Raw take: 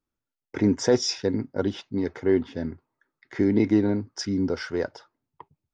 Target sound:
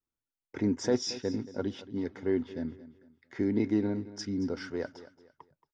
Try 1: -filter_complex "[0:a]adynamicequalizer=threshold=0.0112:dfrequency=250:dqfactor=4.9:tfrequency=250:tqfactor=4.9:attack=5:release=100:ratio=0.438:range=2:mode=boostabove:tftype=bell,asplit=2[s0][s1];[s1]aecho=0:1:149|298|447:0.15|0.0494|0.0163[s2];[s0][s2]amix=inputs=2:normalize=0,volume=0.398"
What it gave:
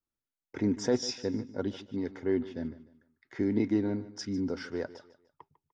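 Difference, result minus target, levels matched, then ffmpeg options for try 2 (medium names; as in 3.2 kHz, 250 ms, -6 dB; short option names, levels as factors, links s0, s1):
echo 77 ms early
-filter_complex "[0:a]adynamicequalizer=threshold=0.0112:dfrequency=250:dqfactor=4.9:tfrequency=250:tqfactor=4.9:attack=5:release=100:ratio=0.438:range=2:mode=boostabove:tftype=bell,asplit=2[s0][s1];[s1]aecho=0:1:226|452|678:0.15|0.0494|0.0163[s2];[s0][s2]amix=inputs=2:normalize=0,volume=0.398"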